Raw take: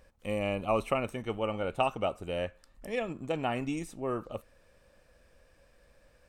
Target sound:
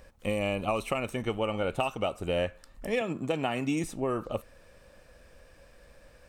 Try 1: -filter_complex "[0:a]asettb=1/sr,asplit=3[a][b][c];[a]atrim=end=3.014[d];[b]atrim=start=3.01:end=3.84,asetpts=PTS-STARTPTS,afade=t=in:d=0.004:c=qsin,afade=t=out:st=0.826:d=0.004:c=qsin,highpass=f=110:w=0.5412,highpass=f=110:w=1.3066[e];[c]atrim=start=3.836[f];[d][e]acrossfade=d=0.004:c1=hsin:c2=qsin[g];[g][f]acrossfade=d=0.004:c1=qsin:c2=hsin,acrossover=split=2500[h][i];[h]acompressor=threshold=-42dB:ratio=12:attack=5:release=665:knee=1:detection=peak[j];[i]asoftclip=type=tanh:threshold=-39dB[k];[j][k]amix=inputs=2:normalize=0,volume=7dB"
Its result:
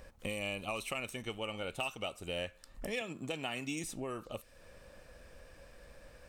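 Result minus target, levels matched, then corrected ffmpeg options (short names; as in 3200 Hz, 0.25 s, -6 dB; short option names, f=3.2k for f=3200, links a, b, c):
compressor: peak gain reduction +11 dB
-filter_complex "[0:a]asettb=1/sr,asplit=3[a][b][c];[a]atrim=end=3.014[d];[b]atrim=start=3.01:end=3.84,asetpts=PTS-STARTPTS,afade=t=in:d=0.004:c=qsin,afade=t=out:st=0.826:d=0.004:c=qsin,highpass=f=110:w=0.5412,highpass=f=110:w=1.3066[e];[c]atrim=start=3.836[f];[d][e]acrossfade=d=0.004:c1=hsin:c2=qsin[g];[g][f]acrossfade=d=0.004:c1=qsin:c2=hsin,acrossover=split=2500[h][i];[h]acompressor=threshold=-30dB:ratio=12:attack=5:release=665:knee=1:detection=peak[j];[i]asoftclip=type=tanh:threshold=-39dB[k];[j][k]amix=inputs=2:normalize=0,volume=7dB"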